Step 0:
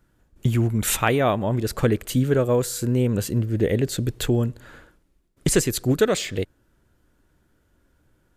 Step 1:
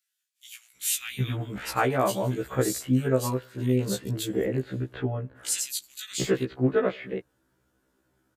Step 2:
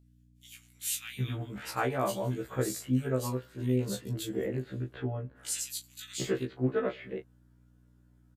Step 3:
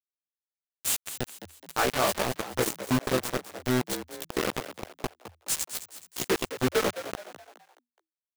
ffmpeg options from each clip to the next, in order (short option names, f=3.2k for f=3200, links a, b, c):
-filter_complex "[0:a]highpass=f=220:p=1,acrossover=split=2400[a][b];[a]adelay=750[c];[c][b]amix=inputs=2:normalize=0,afftfilt=real='re*1.73*eq(mod(b,3),0)':imag='im*1.73*eq(mod(b,3),0)':win_size=2048:overlap=0.75"
-filter_complex "[0:a]aeval=exprs='val(0)+0.00224*(sin(2*PI*60*n/s)+sin(2*PI*2*60*n/s)/2+sin(2*PI*3*60*n/s)/3+sin(2*PI*4*60*n/s)/4+sin(2*PI*5*60*n/s)/5)':c=same,asplit=2[a][b];[b]adelay=24,volume=-9.5dB[c];[a][c]amix=inputs=2:normalize=0,volume=-6.5dB"
-filter_complex "[0:a]lowshelf=f=150:g=-11,acrusher=bits=4:mix=0:aa=0.000001,asplit=2[a][b];[b]asplit=4[c][d][e][f];[c]adelay=211,afreqshift=80,volume=-12dB[g];[d]adelay=422,afreqshift=160,volume=-19.5dB[h];[e]adelay=633,afreqshift=240,volume=-27.1dB[i];[f]adelay=844,afreqshift=320,volume=-34.6dB[j];[g][h][i][j]amix=inputs=4:normalize=0[k];[a][k]amix=inputs=2:normalize=0,volume=4.5dB"